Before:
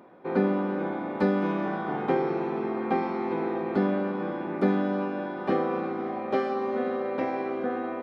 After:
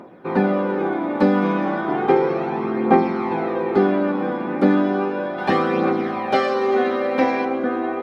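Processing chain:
0:05.38–0:07.45: high-shelf EQ 2,000 Hz +10 dB
phase shifter 0.34 Hz, delay 4.3 ms, feedback 45%
level +7 dB

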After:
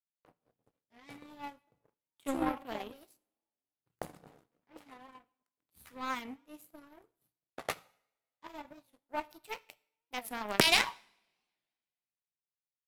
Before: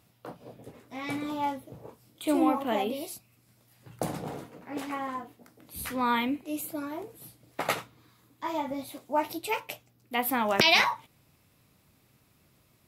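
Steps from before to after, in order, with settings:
power curve on the samples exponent 2
coupled-rooms reverb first 0.62 s, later 1.9 s, from −26 dB, DRR 18.5 dB
wow of a warped record 45 rpm, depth 160 cents
level +4.5 dB

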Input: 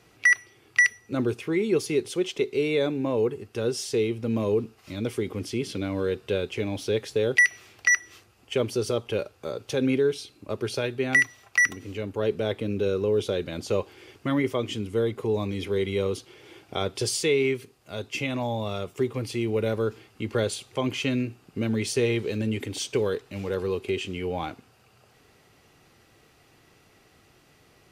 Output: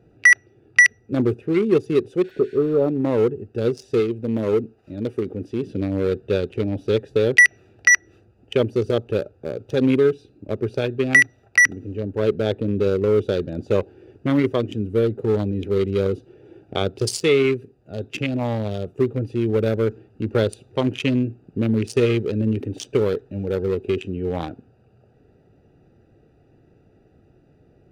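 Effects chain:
adaptive Wiener filter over 41 samples
0:02.27–0:02.86: healed spectral selection 1,400–12,000 Hz after
0:04.00–0:05.64: low-shelf EQ 200 Hz −7 dB
level +7 dB

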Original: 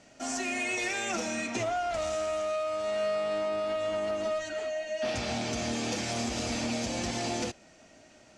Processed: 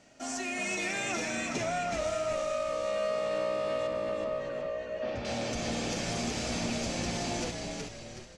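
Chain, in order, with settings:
0:03.87–0:05.25: head-to-tape spacing loss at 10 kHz 26 dB
echo with shifted repeats 372 ms, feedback 44%, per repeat −61 Hz, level −4 dB
level −2.5 dB

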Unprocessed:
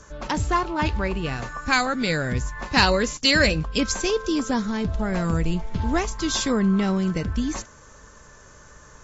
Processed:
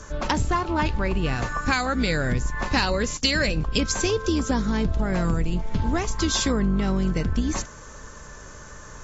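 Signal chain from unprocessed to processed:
sub-octave generator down 2 octaves, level −1 dB
downward compressor, threshold −25 dBFS, peak gain reduction 12 dB
level +5.5 dB

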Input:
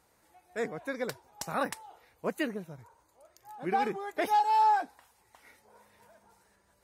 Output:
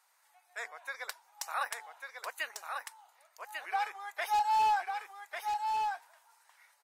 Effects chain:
high-pass filter 840 Hz 24 dB per octave
wave folding −23 dBFS
single-tap delay 1,146 ms −5 dB

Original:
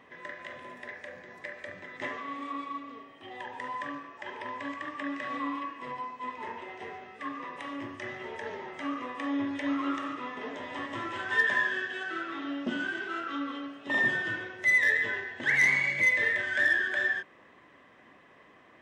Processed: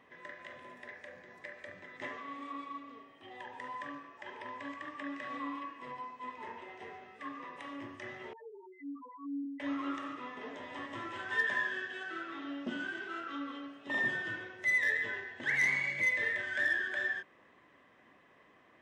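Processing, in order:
0:08.33–0:09.60: spectral peaks only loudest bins 2
level −6 dB

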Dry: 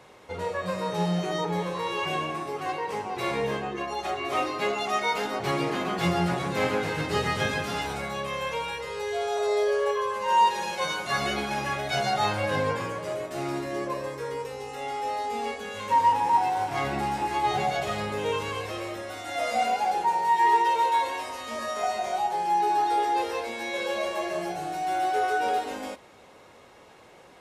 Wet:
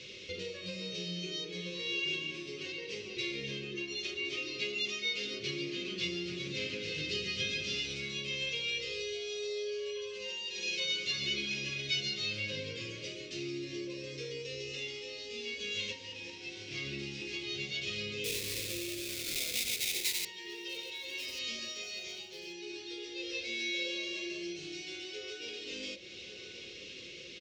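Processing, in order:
Butterworth low-pass 6,000 Hz 36 dB per octave
0:18.24–0:20.25: sample-rate reduction 3,000 Hz, jitter 20%
repeating echo 1,138 ms, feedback 28%, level −23.5 dB
on a send at −8 dB: convolution reverb RT60 0.35 s, pre-delay 3 ms
on the sum: downward compressor 3 to 1, threshold −42 dBFS, peak gain reduction 18.5 dB
drawn EQ curve 510 Hz 0 dB, 770 Hz −30 dB, 1,700 Hz −6 dB, 2,600 Hz +14 dB

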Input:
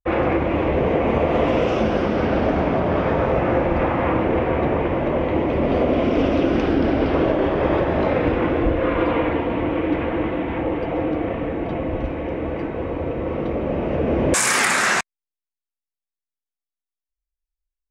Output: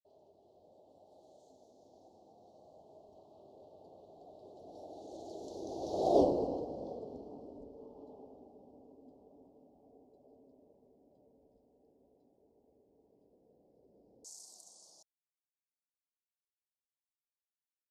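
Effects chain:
source passing by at 0:06.20, 58 m/s, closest 4 metres
Chebyshev band-stop filter 730–4,600 Hz, order 3
RIAA equalisation recording

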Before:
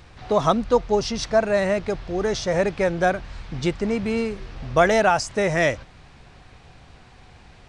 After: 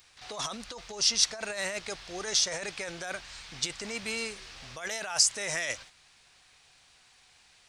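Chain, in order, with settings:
compressor whose output falls as the input rises −23 dBFS, ratio −1
noise gate −39 dBFS, range −7 dB
first-order pre-emphasis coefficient 0.97
level +7 dB

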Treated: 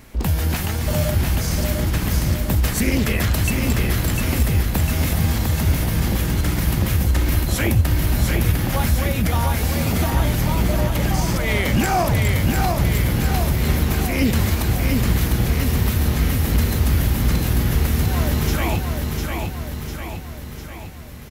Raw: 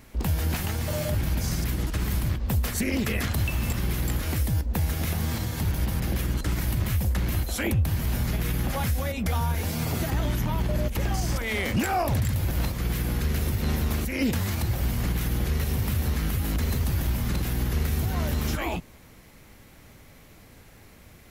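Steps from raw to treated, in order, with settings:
repeating echo 701 ms, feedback 56%, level −4 dB
level +5.5 dB

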